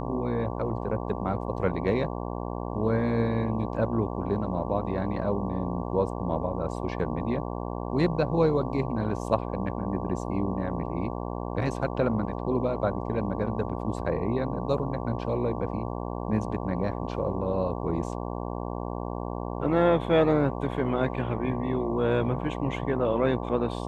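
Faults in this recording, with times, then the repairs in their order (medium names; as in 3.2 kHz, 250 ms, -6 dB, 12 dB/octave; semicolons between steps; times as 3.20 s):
buzz 60 Hz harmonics 19 -33 dBFS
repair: de-hum 60 Hz, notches 19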